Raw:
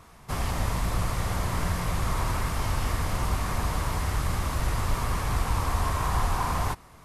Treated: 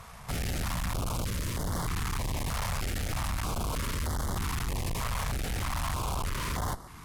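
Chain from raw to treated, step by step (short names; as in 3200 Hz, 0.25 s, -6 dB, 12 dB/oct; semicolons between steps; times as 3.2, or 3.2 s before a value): tube stage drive 38 dB, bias 0.7; 1.22–1.7 bell 1300 Hz -6 dB 1.4 oct; stepped notch 3.2 Hz 320–2500 Hz; gain +9 dB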